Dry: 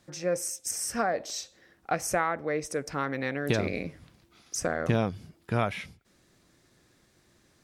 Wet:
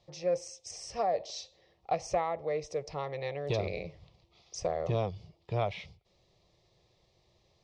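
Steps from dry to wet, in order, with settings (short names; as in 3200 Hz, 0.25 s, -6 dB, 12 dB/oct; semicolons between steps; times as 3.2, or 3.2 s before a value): LPF 5000 Hz 24 dB/oct; fixed phaser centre 630 Hz, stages 4; core saturation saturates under 250 Hz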